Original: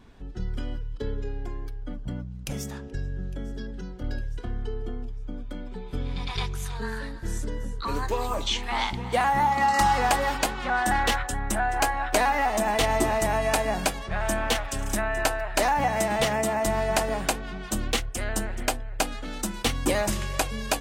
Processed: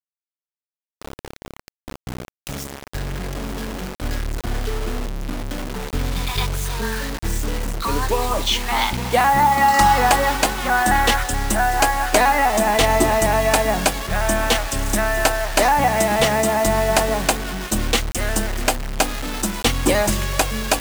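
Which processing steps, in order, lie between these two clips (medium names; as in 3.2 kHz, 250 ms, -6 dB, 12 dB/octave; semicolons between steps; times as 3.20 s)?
fade-in on the opening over 4.87 s; bit crusher 6-bit; trim +7 dB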